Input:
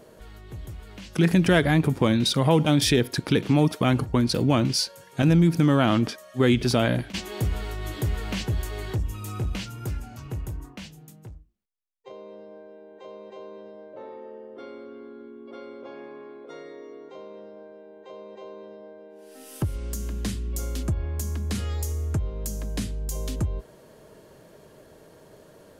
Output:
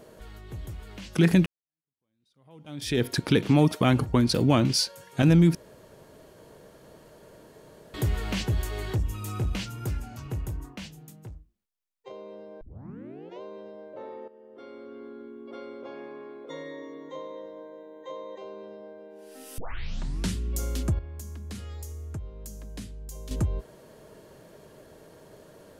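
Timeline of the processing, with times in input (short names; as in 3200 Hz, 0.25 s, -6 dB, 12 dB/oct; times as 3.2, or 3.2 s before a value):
1.46–3.04 fade in exponential
5.55–7.94 room tone
12.61 tape start 0.80 s
14.28–15.06 fade in, from -13.5 dB
16.49–18.38 ripple EQ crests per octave 1.1, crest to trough 16 dB
19.58 tape start 0.77 s
20.99–23.31 gain -10 dB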